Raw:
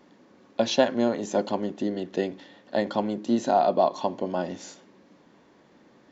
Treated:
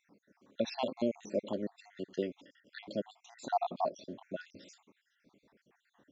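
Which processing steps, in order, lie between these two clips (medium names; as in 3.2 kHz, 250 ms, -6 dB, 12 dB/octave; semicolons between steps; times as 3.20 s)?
random holes in the spectrogram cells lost 62%; trim -7 dB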